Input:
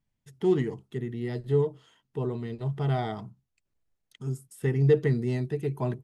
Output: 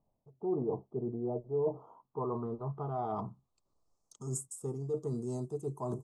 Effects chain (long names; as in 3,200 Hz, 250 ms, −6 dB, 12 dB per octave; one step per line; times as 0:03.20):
drawn EQ curve 120 Hz 0 dB, 1,200 Hz +11 dB, 1,800 Hz −29 dB, 7,800 Hz +12 dB
reversed playback
downward compressor 5 to 1, threshold −35 dBFS, peak gain reduction 21.5 dB
reversed playback
low-pass filter sweep 670 Hz → 7,500 Hz, 0:01.62–0:04.37